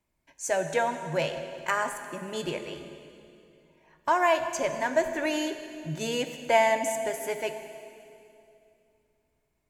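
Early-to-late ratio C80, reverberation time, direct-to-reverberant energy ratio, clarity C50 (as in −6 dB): 9.0 dB, 2.7 s, 7.0 dB, 8.5 dB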